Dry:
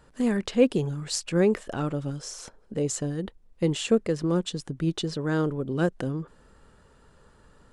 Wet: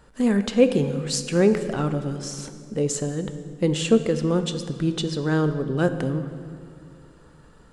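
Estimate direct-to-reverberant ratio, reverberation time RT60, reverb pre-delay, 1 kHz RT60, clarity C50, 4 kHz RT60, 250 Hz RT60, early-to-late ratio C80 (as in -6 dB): 8.5 dB, 2.3 s, 3 ms, 2.1 s, 10.0 dB, 1.6 s, 2.9 s, 11.0 dB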